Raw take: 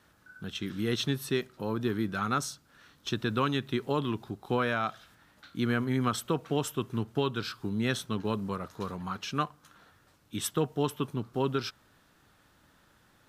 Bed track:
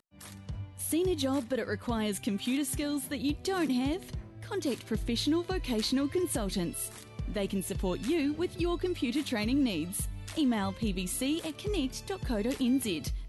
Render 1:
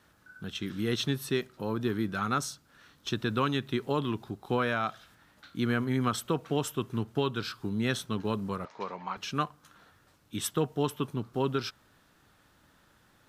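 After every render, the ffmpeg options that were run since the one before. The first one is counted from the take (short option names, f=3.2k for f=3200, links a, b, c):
-filter_complex "[0:a]asettb=1/sr,asplit=3[a][b][c];[a]atrim=end=8.654[d];[b]atrim=start=8.65:end=9.17,asetpts=PTS-STARTPTS,afade=t=in:d=0.004:c=qsin,afade=t=out:st=0.516:d=0.004:c=qsin,highpass=290,equalizer=f=310:t=q:w=4:g=-5,equalizer=f=590:t=q:w=4:g=4,equalizer=f=890:t=q:w=4:g=7,equalizer=f=1.4k:t=q:w=4:g=-4,equalizer=f=2.2k:t=q:w=4:g=9,equalizer=f=3.7k:t=q:w=4:g=-4,lowpass=f=5.5k:w=0.5412,lowpass=f=5.5k:w=1.3066[e];[c]atrim=start=9.166[f];[d][e]acrossfade=d=0.004:c1=hsin:c2=qsin[g];[g][f]acrossfade=d=0.004:c1=qsin:c2=hsin"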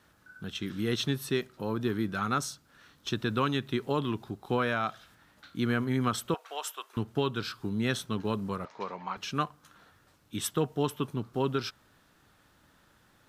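-filter_complex "[0:a]asettb=1/sr,asplit=3[a][b][c];[a]atrim=end=6.344[d];[b]atrim=start=6.34:end=6.97,asetpts=PTS-STARTPTS,afade=t=in:d=0.004:c=qsin,afade=t=out:st=0.626:d=0.004:c=qsin,highpass=f=640:w=0.5412,highpass=f=640:w=1.3066[e];[c]atrim=start=6.966[f];[d][e]acrossfade=d=0.004:c1=hsin:c2=qsin[g];[g][f]acrossfade=d=0.004:c1=qsin:c2=hsin"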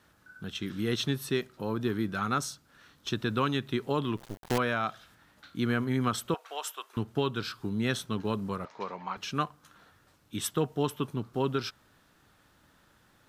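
-filter_complex "[0:a]asettb=1/sr,asplit=3[a][b][c];[a]atrim=end=4.174[d];[b]atrim=start=4.17:end=4.58,asetpts=PTS-STARTPTS,afade=t=in:d=0.004:c=qsin,afade=t=out:st=0.406:d=0.004:c=qsin,acrusher=bits=5:dc=4:mix=0:aa=0.000001[e];[c]atrim=start=4.576[f];[d][e]acrossfade=d=0.004:c1=hsin:c2=qsin[g];[g][f]acrossfade=d=0.004:c1=qsin:c2=hsin"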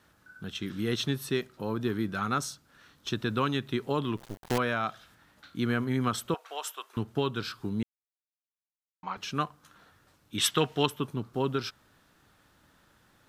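-filter_complex "[0:a]asettb=1/sr,asplit=3[a][b][c];[a]atrim=end=10.384[d];[b]atrim=start=10.38:end=10.86,asetpts=PTS-STARTPTS,afade=t=in:d=0.004:c=qsin,afade=t=out:st=0.476:d=0.004:c=qsin,equalizer=f=2.8k:t=o:w=2.5:g=13.5[e];[c]atrim=start=10.856[f];[d][e]acrossfade=d=0.004:c1=hsin:c2=qsin[g];[g][f]acrossfade=d=0.004:c1=qsin:c2=hsin,asplit=3[h][i][j];[h]atrim=end=7.83,asetpts=PTS-STARTPTS,afade=t=out:st=7.826:d=0.004:c=hsin[k];[i]atrim=start=7.83:end=9.03,asetpts=PTS-STARTPTS,volume=0[l];[j]atrim=start=9.03,asetpts=PTS-STARTPTS,afade=t=in:d=0.004:c=hsin[m];[k][l][m]concat=n=3:v=0:a=1"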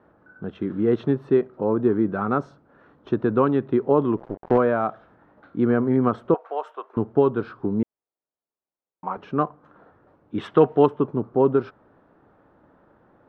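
-af "lowpass=1.3k,equalizer=f=480:w=0.44:g=13"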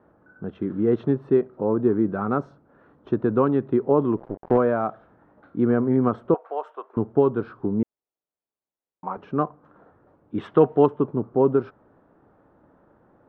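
-af "highshelf=f=2.1k:g=-9.5"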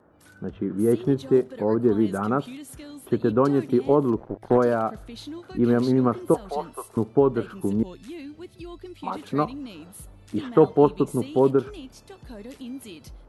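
-filter_complex "[1:a]volume=-9dB[a];[0:a][a]amix=inputs=2:normalize=0"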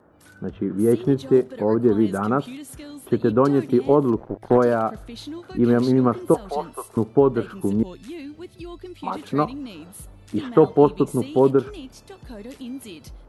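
-af "volume=2.5dB,alimiter=limit=-3dB:level=0:latency=1"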